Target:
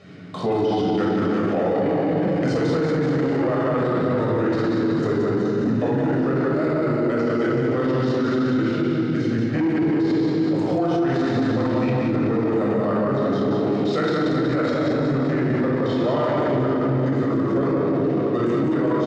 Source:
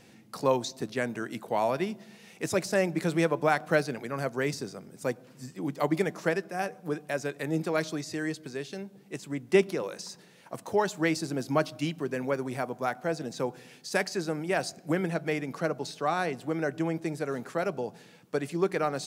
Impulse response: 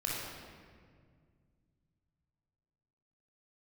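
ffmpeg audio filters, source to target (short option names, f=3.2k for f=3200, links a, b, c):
-filter_complex "[0:a]lowshelf=f=430:g=12,asetrate=36028,aresample=44100,atempo=1.22405[a];[1:a]atrim=start_sample=2205[b];[a][b]afir=irnorm=-1:irlink=0,acontrast=73,lowpass=4k,acompressor=threshold=-13dB:ratio=6,highpass=220,aecho=1:1:180|378|595.8|835.4|1099:0.631|0.398|0.251|0.158|0.1,alimiter=limit=-14dB:level=0:latency=1:release=11"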